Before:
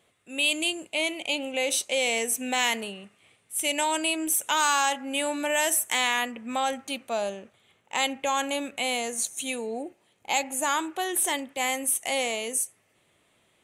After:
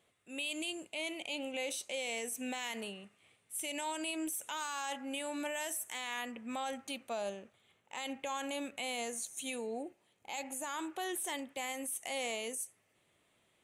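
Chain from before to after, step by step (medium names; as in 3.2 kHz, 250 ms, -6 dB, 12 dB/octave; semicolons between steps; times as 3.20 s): peak limiter -22.5 dBFS, peak gain reduction 11 dB; trim -7 dB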